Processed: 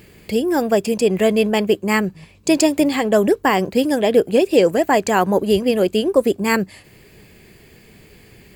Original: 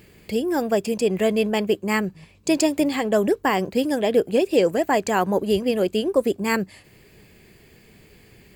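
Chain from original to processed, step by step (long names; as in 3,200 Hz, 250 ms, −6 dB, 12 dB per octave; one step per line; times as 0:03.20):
parametric band 11,000 Hz +2 dB 0.23 octaves
level +4.5 dB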